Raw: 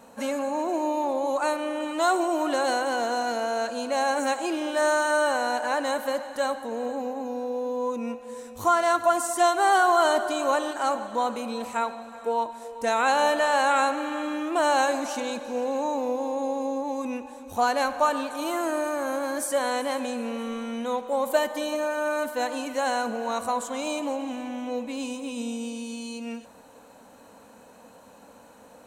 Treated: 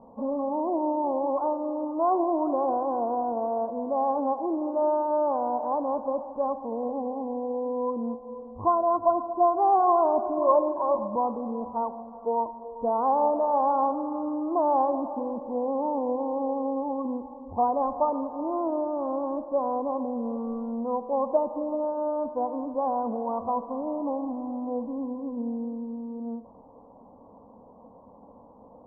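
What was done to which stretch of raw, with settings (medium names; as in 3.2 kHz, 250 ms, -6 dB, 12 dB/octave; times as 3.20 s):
10.37–11.16 s: rippled EQ curve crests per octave 1.3, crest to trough 15 dB
whole clip: Chebyshev low-pass 1.1 kHz, order 6; bass shelf 100 Hz +8 dB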